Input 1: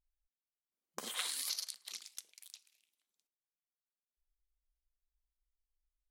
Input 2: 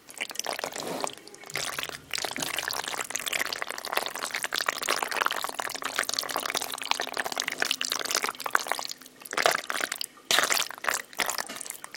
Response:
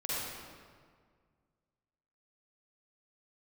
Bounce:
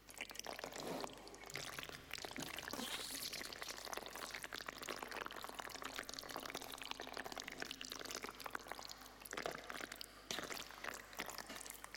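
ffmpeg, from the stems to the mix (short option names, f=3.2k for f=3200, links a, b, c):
-filter_complex "[0:a]aphaser=in_gain=1:out_gain=1:delay=3.9:decay=0.67:speed=1.4:type=sinusoidal,adelay=1750,volume=1.5dB[a];[1:a]aeval=exprs='val(0)+0.00112*(sin(2*PI*50*n/s)+sin(2*PI*2*50*n/s)/2+sin(2*PI*3*50*n/s)/3+sin(2*PI*4*50*n/s)/4+sin(2*PI*5*50*n/s)/5)':c=same,volume=-11dB,asplit=2[b][c];[c]volume=-17.5dB[d];[2:a]atrim=start_sample=2205[e];[d][e]afir=irnorm=-1:irlink=0[f];[a][b][f]amix=inputs=3:normalize=0,equalizer=f=8.9k:t=o:w=0.44:g=-5.5,acrossover=split=390[g][h];[h]acompressor=threshold=-44dB:ratio=6[i];[g][i]amix=inputs=2:normalize=0"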